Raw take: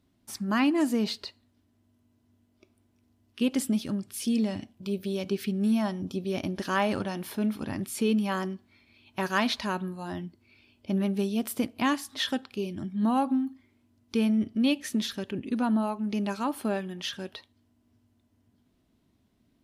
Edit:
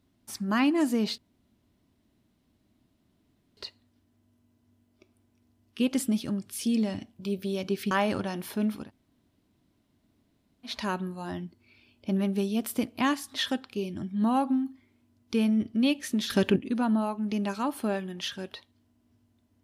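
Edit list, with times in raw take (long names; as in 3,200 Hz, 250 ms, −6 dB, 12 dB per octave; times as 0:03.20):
0:01.18: splice in room tone 2.39 s
0:05.52–0:06.72: remove
0:07.64–0:09.52: fill with room tone, crossfade 0.16 s
0:15.11–0:15.37: clip gain +11 dB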